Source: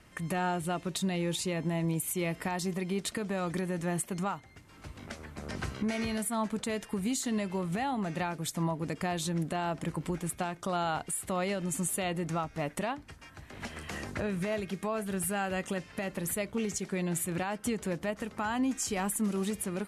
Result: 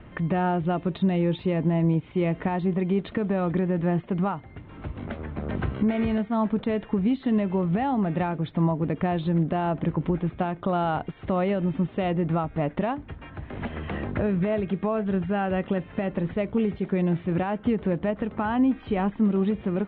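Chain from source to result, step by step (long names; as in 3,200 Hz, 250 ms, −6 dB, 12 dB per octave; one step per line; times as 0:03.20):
Butterworth low-pass 3,700 Hz 72 dB per octave
tilt shelving filter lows +6.5 dB, about 1,300 Hz
in parallel at 0 dB: downward compressor, threshold −40 dBFS, peak gain reduction 18 dB
on the sum: level +1.5 dB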